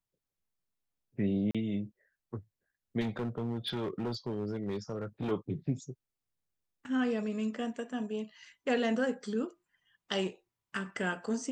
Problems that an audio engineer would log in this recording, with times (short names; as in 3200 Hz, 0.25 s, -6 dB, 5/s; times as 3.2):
1.51–1.55 gap 36 ms
3–5.32 clipped -30 dBFS